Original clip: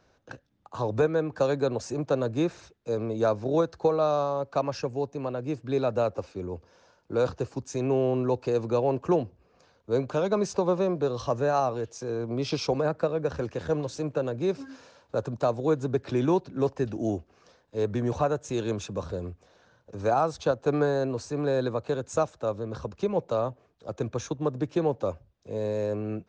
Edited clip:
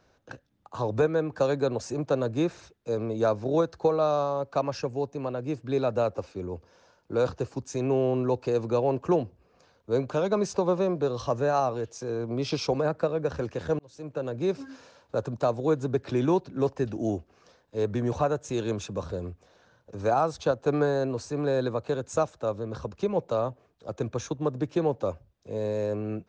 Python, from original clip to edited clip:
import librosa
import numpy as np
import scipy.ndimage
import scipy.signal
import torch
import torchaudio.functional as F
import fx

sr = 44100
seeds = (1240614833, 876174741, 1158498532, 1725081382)

y = fx.edit(x, sr, fx.fade_in_span(start_s=13.79, length_s=0.63), tone=tone)